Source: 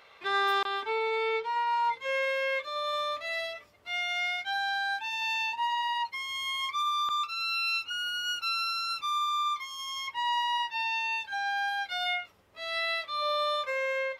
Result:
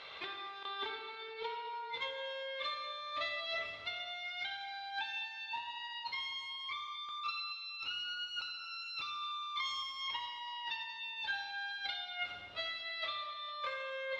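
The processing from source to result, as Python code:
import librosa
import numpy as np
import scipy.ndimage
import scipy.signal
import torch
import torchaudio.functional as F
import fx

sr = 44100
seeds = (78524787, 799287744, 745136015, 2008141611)

y = scipy.signal.sosfilt(scipy.signal.butter(2, 4800.0, 'lowpass', fs=sr, output='sos'), x)
y = fx.peak_eq(y, sr, hz=3700.0, db=9.5, octaves=0.75)
y = fx.over_compress(y, sr, threshold_db=-38.0, ratio=-1.0)
y = fx.echo_feedback(y, sr, ms=226, feedback_pct=58, wet_db=-17)
y = fx.rev_plate(y, sr, seeds[0], rt60_s=1.4, hf_ratio=0.8, predelay_ms=0, drr_db=2.5)
y = y * 10.0 ** (-6.0 / 20.0)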